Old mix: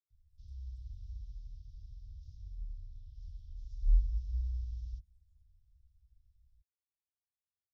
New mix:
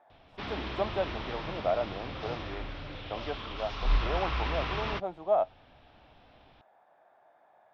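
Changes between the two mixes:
speech +9.0 dB; master: remove inverse Chebyshev band-stop 360–1900 Hz, stop band 80 dB

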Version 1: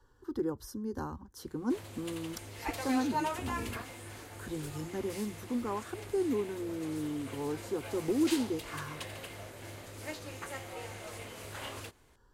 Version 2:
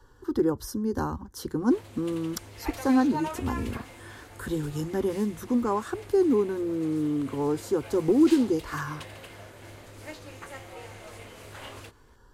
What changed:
speech +9.0 dB; background: add treble shelf 5.5 kHz -4.5 dB

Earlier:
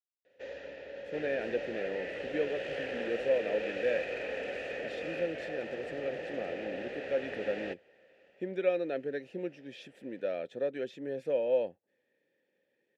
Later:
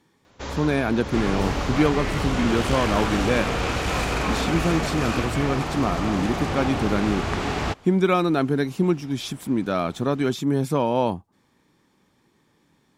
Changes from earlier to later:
speech: entry -0.55 s; master: remove vowel filter e

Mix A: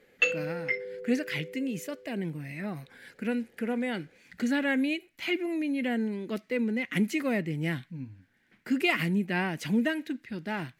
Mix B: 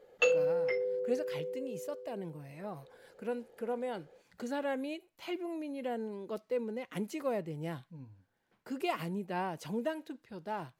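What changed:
speech -7.0 dB; master: add ten-band graphic EQ 250 Hz -7 dB, 500 Hz +6 dB, 1 kHz +9 dB, 2 kHz -12 dB

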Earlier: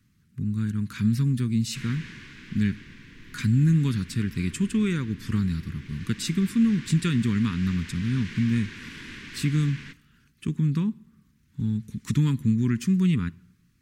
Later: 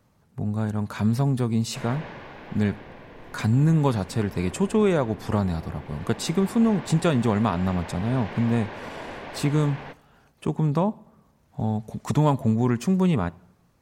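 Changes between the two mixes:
background: add distance through air 160 m; master: remove Chebyshev band-stop 250–1800 Hz, order 2

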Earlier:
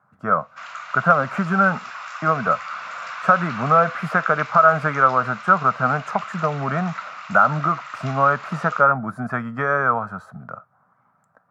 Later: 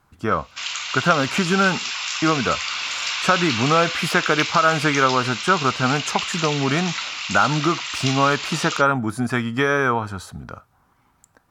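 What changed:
speech: remove high-pass 130 Hz 24 dB/octave; master: remove FFT filter 200 Hz 0 dB, 330 Hz -14 dB, 630 Hz +5 dB, 900 Hz -3 dB, 1.3 kHz +5 dB, 3.1 kHz -20 dB

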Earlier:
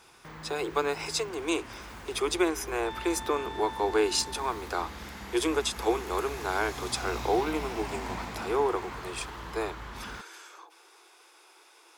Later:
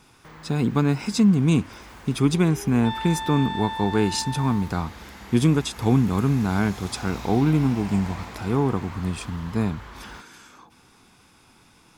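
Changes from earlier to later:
speech: remove steep high-pass 330 Hz 96 dB/octave; second sound +10.0 dB

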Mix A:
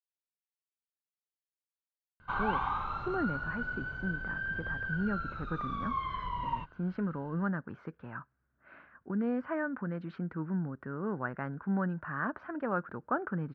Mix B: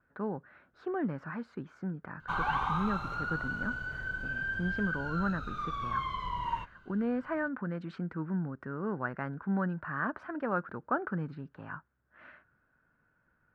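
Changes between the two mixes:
speech: entry -2.20 s; master: remove distance through air 180 m

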